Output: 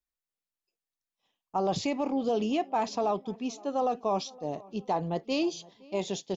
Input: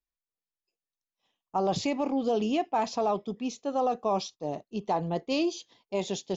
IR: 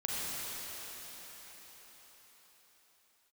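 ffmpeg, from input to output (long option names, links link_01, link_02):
-filter_complex "[0:a]asplit=2[link_01][link_02];[link_02]adelay=516,lowpass=frequency=2200:poles=1,volume=-23dB,asplit=2[link_03][link_04];[link_04]adelay=516,lowpass=frequency=2200:poles=1,volume=0.47,asplit=2[link_05][link_06];[link_06]adelay=516,lowpass=frequency=2200:poles=1,volume=0.47[link_07];[link_01][link_03][link_05][link_07]amix=inputs=4:normalize=0,volume=-1dB"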